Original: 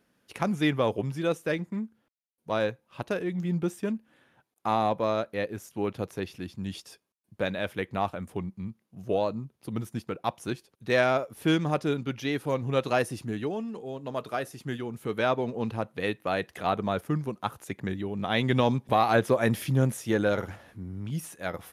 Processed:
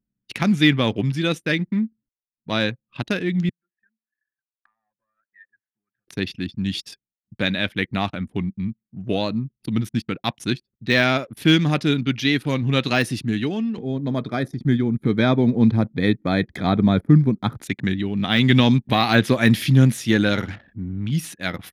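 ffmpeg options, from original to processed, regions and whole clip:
ffmpeg -i in.wav -filter_complex "[0:a]asettb=1/sr,asplit=3[link_01][link_02][link_03];[link_01]atrim=end=3.494[link_04];[link_02]atrim=start=3.49:end=6.08,asetpts=PTS-STARTPTS,afade=type=in:duration=0.004:curve=qsin,afade=type=out:start_time=2.586:duration=0.004:curve=qsin,acompressor=threshold=-41dB:ratio=4:attack=3.2:release=140:knee=1:detection=peak,bandpass=frequency=1700:width_type=q:width=5.4[link_05];[link_03]atrim=start=6.076[link_06];[link_04][link_05]acrossfade=duration=0.004:curve1=hsin:curve2=qsin[link_07];[link_07][link_06]acrossfade=duration=0.004:curve1=qsin:curve2=hsin,asettb=1/sr,asplit=3[link_08][link_09][link_10];[link_08]atrim=end=13.784[link_11];[link_09]atrim=start=13.78:end=17.62,asetpts=PTS-STARTPTS,afade=type=in:duration=0.004:curve=qsin,afade=type=out:start_time=3.836:duration=0.004:curve=qsin,tiltshelf=frequency=880:gain=6.5,acompressor=mode=upward:threshold=-36dB:ratio=2.5:attack=3.2:release=140:knee=2.83:detection=peak,asuperstop=centerf=2800:order=8:qfactor=4.9[link_12];[link_10]atrim=start=17.616[link_13];[link_11][link_12]acrossfade=duration=0.004:curve1=hsin:curve2=qsin[link_14];[link_14][link_13]acrossfade=duration=0.004:curve1=qsin:curve2=hsin,anlmdn=0.01,equalizer=frequency=125:width_type=o:width=1:gain=4,equalizer=frequency=250:width_type=o:width=1:gain=7,equalizer=frequency=500:width_type=o:width=1:gain=-6,equalizer=frequency=1000:width_type=o:width=1:gain=-4,equalizer=frequency=2000:width_type=o:width=1:gain=6,equalizer=frequency=4000:width_type=o:width=1:gain=10,deesser=0.6,volume=5dB" out.wav

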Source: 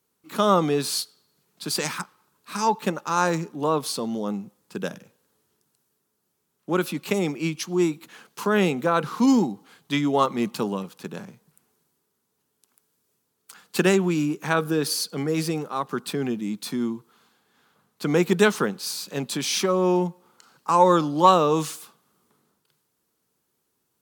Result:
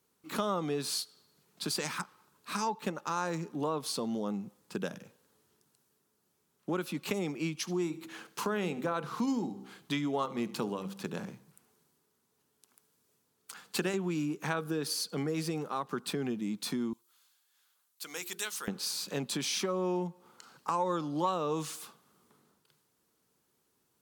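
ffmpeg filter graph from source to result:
ffmpeg -i in.wav -filter_complex "[0:a]asettb=1/sr,asplit=3[link_01][link_02][link_03];[link_01]atrim=end=7.574[link_04];[link_02]atrim=start=7.57:end=13.94,asetpts=PTS-STARTPTS,afade=type=in:duration=0.004:curve=qsin,afade=type=out:start_time=6.366:duration=0.004:curve=qsin,bandreject=frequency=65.05:width_type=h:width=4,bandreject=frequency=130.1:width_type=h:width=4,bandreject=frequency=195.15:width_type=h:width=4,bandreject=frequency=260.2:width_type=h:width=4,bandreject=frequency=325.25:width_type=h:width=4,bandreject=frequency=390.3:width_type=h:width=4,bandreject=frequency=455.35:width_type=h:width=4,bandreject=frequency=520.4:width_type=h:width=4,aecho=1:1:74|148|222:0.0944|0.0378|0.0151,atrim=end_sample=280917[link_05];[link_03]atrim=start=13.936[link_06];[link_04][link_05]acrossfade=duration=0.004:curve1=hsin:curve2=qsin[link_07];[link_07][link_06]acrossfade=duration=0.004:curve1=qsin:curve2=hsin,asettb=1/sr,asplit=3[link_08][link_09][link_10];[link_08]atrim=end=16.934[link_11];[link_09]atrim=start=16.93:end=18.68,asetpts=PTS-STARTPTS,afade=type=in:duration=0.004:curve=qsin,afade=type=out:start_time=1.746:duration=0.004:curve=qsin,aderivative,bandreject=frequency=50:width_type=h:width=6,bandreject=frequency=100:width_type=h:width=6,bandreject=frequency=150:width_type=h:width=6,bandreject=frequency=200:width_type=h:width=6,bandreject=frequency=250:width_type=h:width=6,bandreject=frequency=300:width_type=h:width=6,bandreject=frequency=350:width_type=h:width=6,bandreject=frequency=400:width_type=h:width=6,bandreject=frequency=450:width_type=h:width=6[link_12];[link_10]atrim=start=18.676[link_13];[link_11][link_12]acrossfade=duration=0.004:curve1=hsin:curve2=qsin[link_14];[link_14][link_13]acrossfade=duration=0.004:curve1=qsin:curve2=hsin,equalizer=frequency=15000:width_type=o:width=0.81:gain=-3,acompressor=threshold=-33dB:ratio=3" out.wav

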